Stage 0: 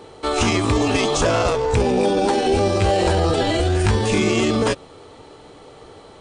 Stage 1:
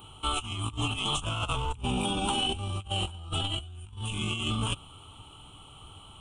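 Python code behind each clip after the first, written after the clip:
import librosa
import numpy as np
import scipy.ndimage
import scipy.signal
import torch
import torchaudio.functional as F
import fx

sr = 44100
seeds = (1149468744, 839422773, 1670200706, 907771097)

y = fx.curve_eq(x, sr, hz=(100.0, 330.0, 490.0, 830.0, 1300.0, 1800.0, 3000.0, 4700.0, 11000.0), db=(0, -15, -25, -10, -4, -27, 7, -24, 9))
y = fx.over_compress(y, sr, threshold_db=-28.0, ratio=-0.5)
y = y * librosa.db_to_amplitude(-3.0)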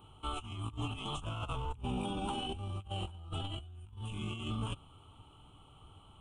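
y = fx.high_shelf(x, sr, hz=2100.0, db=-10.5)
y = y * librosa.db_to_amplitude(-6.0)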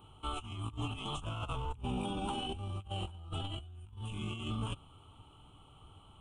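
y = x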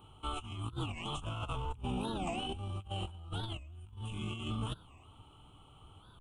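y = fx.record_warp(x, sr, rpm=45.0, depth_cents=250.0)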